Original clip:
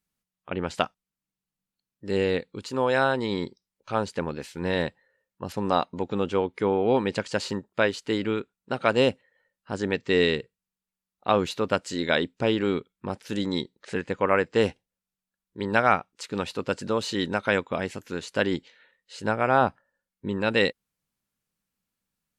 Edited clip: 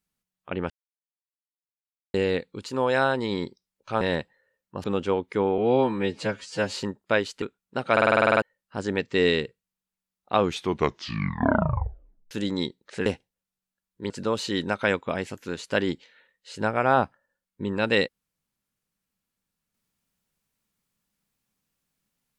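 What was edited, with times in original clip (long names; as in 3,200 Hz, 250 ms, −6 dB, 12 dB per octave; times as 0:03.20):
0:00.70–0:02.14: silence
0:04.01–0:04.68: remove
0:05.51–0:06.10: remove
0:06.84–0:07.42: time-stretch 2×
0:08.10–0:08.37: remove
0:08.87: stutter in place 0.05 s, 10 plays
0:11.34: tape stop 1.92 s
0:14.01–0:14.62: remove
0:15.66–0:16.74: remove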